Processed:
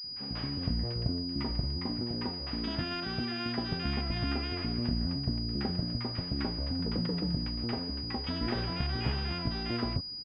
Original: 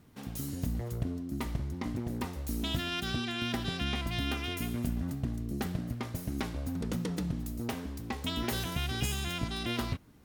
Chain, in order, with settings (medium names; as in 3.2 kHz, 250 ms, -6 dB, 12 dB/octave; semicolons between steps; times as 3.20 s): 1.84–3.68 s: high-pass 120 Hz 6 dB/octave; bands offset in time highs, lows 40 ms, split 1.1 kHz; class-D stage that switches slowly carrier 4.9 kHz; trim +1.5 dB